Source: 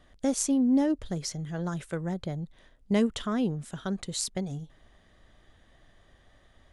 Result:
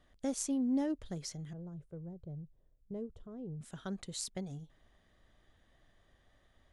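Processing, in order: 1.53–3.61 EQ curve 150 Hz 0 dB, 210 Hz -11 dB, 440 Hz -5 dB, 1900 Hz -28 dB; gain -8.5 dB

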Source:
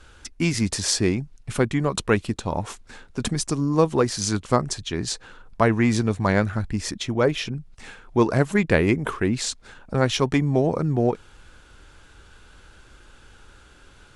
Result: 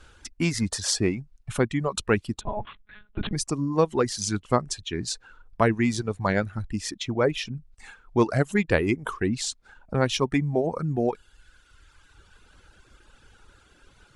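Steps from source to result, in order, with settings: reverb removal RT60 1.5 s; 2.41–3.33 monotone LPC vocoder at 8 kHz 210 Hz; gain -2 dB

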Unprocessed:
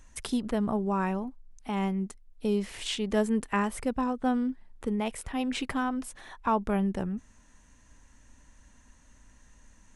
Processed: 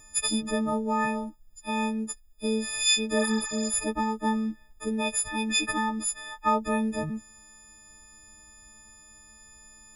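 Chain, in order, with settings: frequency quantiser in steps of 6 st; spectral repair 3.21–3.69, 760–7600 Hz both

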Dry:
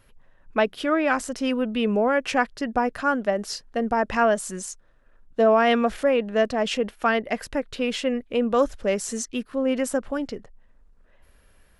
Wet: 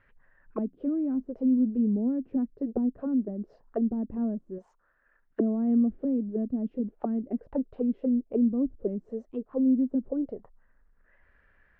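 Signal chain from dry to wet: 4.58–5.4 low shelf 260 Hz -10.5 dB; envelope low-pass 260–1900 Hz down, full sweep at -21 dBFS; gain -8.5 dB

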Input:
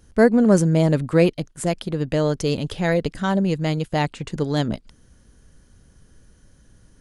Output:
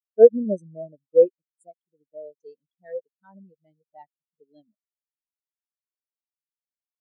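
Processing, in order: RIAA curve recording; spectral expander 4:1

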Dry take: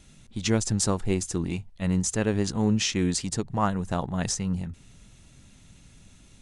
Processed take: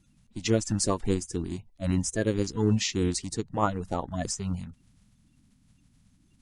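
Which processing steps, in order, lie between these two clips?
bin magnitudes rounded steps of 30 dB; upward expander 1.5:1, over -42 dBFS; gain +1 dB

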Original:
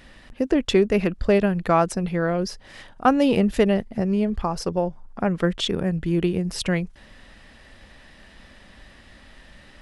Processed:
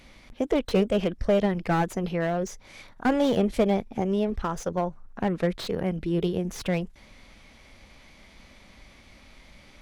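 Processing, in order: formant shift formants +3 st; slew limiter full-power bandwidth 120 Hz; gain -3.5 dB

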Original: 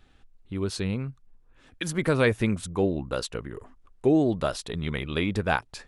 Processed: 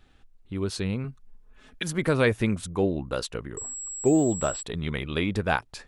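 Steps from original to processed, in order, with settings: 1.04–1.83 comb 4.7 ms, depth 95%; 3.57–4.63 pulse-width modulation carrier 7700 Hz

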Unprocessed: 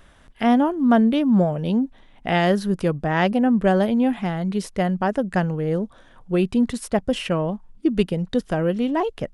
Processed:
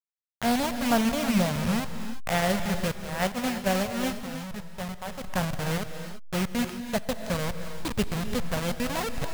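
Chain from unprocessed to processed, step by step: level-crossing sampler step -18 dBFS; 2.97–5.28 gate -19 dBFS, range -8 dB; bell 330 Hz -12 dB 0.7 oct; non-linear reverb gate 0.37 s rising, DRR 8 dB; gain -3.5 dB

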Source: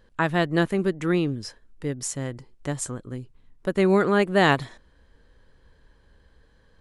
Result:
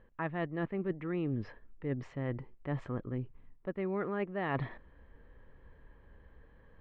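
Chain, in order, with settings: LPF 2400 Hz 24 dB/oct; notch 1500 Hz, Q 10; reverse; compressor 12:1, threshold -31 dBFS, peak gain reduction 17 dB; reverse

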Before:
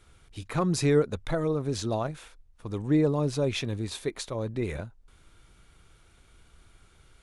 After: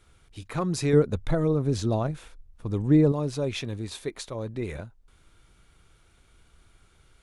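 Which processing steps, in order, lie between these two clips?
0.93–3.12 low shelf 410 Hz +8.5 dB; gain -1.5 dB

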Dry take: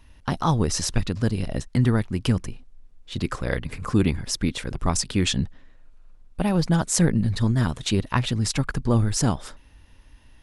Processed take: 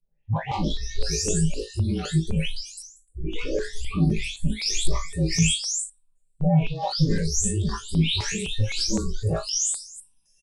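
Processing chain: spectral delay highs late, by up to 0.525 s; soft clip -24.5 dBFS, distortion -8 dB; LPF 8900 Hz 24 dB/oct; bell 1400 Hz -8.5 dB 0.72 oct; comb 4.9 ms, depth 36%; frequency shift -30 Hz; flutter echo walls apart 3.2 m, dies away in 0.25 s; spectral noise reduction 26 dB; step phaser 3.9 Hz 280–4100 Hz; gain +8 dB

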